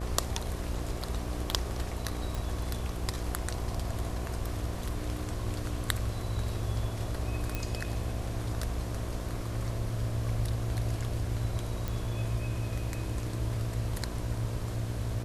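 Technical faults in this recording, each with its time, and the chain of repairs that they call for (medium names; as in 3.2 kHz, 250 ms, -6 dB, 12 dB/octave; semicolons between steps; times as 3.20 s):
buzz 60 Hz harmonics 11 -38 dBFS
2.35 s: pop
7.55 s: pop -17 dBFS
11.88 s: pop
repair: de-click; de-hum 60 Hz, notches 11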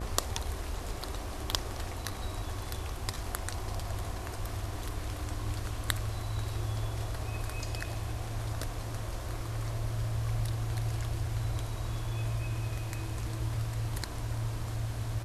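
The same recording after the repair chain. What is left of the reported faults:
11.88 s: pop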